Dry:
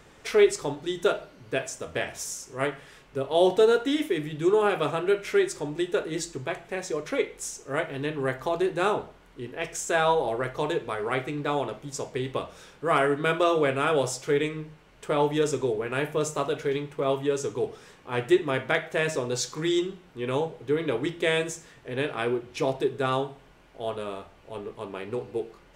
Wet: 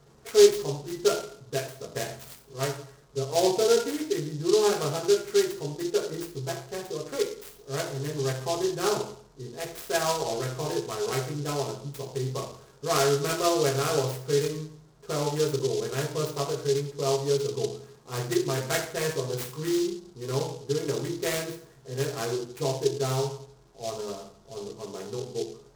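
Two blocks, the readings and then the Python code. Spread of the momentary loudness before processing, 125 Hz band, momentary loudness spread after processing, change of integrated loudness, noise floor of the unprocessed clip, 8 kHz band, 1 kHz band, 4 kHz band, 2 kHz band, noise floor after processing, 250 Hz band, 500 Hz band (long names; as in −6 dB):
12 LU, +3.5 dB, 14 LU, −1.0 dB, −54 dBFS, +3.5 dB, −4.0 dB, +2.0 dB, −6.5 dB, −55 dBFS, −2.5 dB, −0.5 dB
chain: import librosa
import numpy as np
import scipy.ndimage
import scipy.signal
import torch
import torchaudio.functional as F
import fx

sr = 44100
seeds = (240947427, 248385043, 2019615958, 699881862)

y = fx.wiener(x, sr, points=15)
y = fx.rev_fdn(y, sr, rt60_s=0.57, lf_ratio=1.1, hf_ratio=0.7, size_ms=43.0, drr_db=-2.0)
y = fx.noise_mod_delay(y, sr, seeds[0], noise_hz=4800.0, depth_ms=0.078)
y = y * librosa.db_to_amplitude(-6.5)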